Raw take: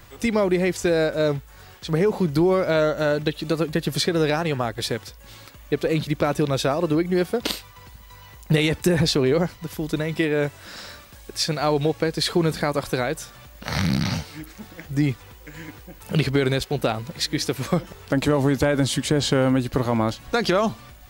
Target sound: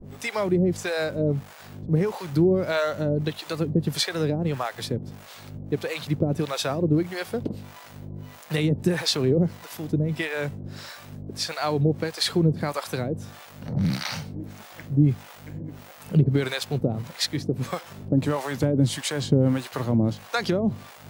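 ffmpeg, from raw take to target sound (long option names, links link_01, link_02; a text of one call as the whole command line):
ffmpeg -i in.wav -filter_complex "[0:a]aeval=exprs='val(0)+0.0251*(sin(2*PI*50*n/s)+sin(2*PI*2*50*n/s)/2+sin(2*PI*3*50*n/s)/3+sin(2*PI*4*50*n/s)/4+sin(2*PI*5*50*n/s)/5)':channel_layout=same,adynamicequalizer=threshold=0.0141:dfrequency=110:dqfactor=0.9:tfrequency=110:tqfactor=0.9:attack=5:release=100:ratio=0.375:range=4:mode=boostabove:tftype=bell,acrossover=split=100[link_01][link_02];[link_01]aeval=exprs='(mod(79.4*val(0)+1,2)-1)/79.4':channel_layout=same[link_03];[link_03][link_02]amix=inputs=2:normalize=0,acrossover=split=560[link_04][link_05];[link_04]aeval=exprs='val(0)*(1-1/2+1/2*cos(2*PI*1.6*n/s))':channel_layout=same[link_06];[link_05]aeval=exprs='val(0)*(1-1/2-1/2*cos(2*PI*1.6*n/s))':channel_layout=same[link_07];[link_06][link_07]amix=inputs=2:normalize=0" out.wav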